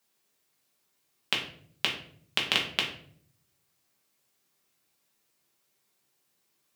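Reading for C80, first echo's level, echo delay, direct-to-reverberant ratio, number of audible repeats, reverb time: 10.5 dB, no echo audible, no echo audible, −2.0 dB, no echo audible, 0.60 s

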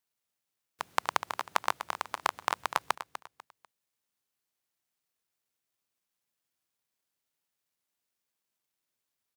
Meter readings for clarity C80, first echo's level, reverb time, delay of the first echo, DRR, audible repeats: no reverb audible, −11.5 dB, no reverb audible, 247 ms, no reverb audible, 3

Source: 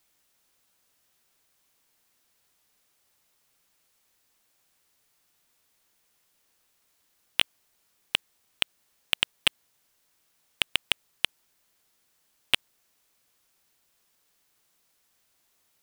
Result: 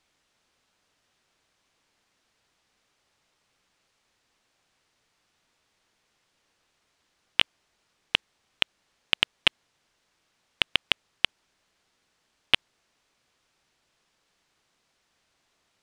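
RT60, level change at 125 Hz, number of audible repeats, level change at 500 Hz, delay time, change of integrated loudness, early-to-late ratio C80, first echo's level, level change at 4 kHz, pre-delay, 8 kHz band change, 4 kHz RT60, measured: no reverb audible, +4.0 dB, no echo audible, +3.5 dB, no echo audible, +2.0 dB, no reverb audible, no echo audible, +2.0 dB, no reverb audible, −7.5 dB, no reverb audible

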